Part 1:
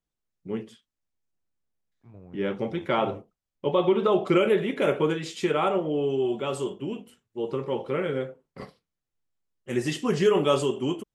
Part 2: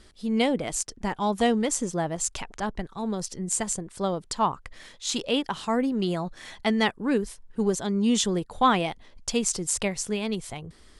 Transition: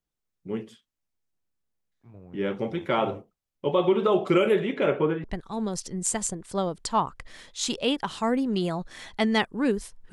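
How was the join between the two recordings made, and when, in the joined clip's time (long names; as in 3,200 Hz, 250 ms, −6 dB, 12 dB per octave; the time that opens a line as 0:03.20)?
part 1
0:04.59–0:05.24: low-pass filter 7,800 Hz → 1,300 Hz
0:05.24: continue with part 2 from 0:02.70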